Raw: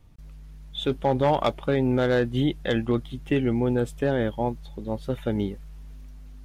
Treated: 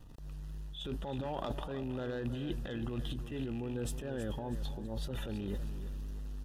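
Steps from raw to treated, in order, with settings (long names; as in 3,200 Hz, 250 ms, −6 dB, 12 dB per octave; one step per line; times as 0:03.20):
loose part that buzzes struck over −27 dBFS, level −27 dBFS
transient designer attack −7 dB, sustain +12 dB
reversed playback
downward compressor 6 to 1, threshold −36 dBFS, peak gain reduction 19 dB
reversed playback
Butterworth band-reject 2,200 Hz, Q 5.2
on a send: repeating echo 322 ms, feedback 39%, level −12 dB
on the sum: tape wow and flutter 27 cents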